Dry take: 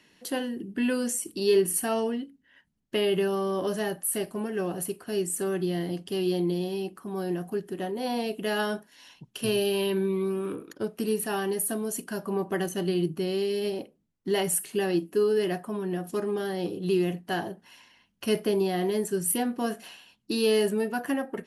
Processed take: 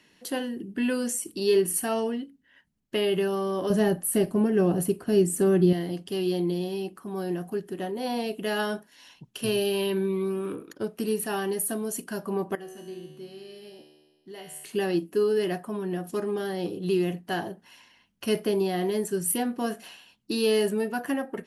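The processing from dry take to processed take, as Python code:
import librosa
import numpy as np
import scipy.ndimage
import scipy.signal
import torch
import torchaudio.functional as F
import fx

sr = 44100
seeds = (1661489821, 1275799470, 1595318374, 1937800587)

y = fx.low_shelf(x, sr, hz=480.0, db=12.0, at=(3.7, 5.73))
y = fx.comb_fb(y, sr, f0_hz=75.0, decay_s=1.4, harmonics='all', damping=0.0, mix_pct=90, at=(12.55, 14.64))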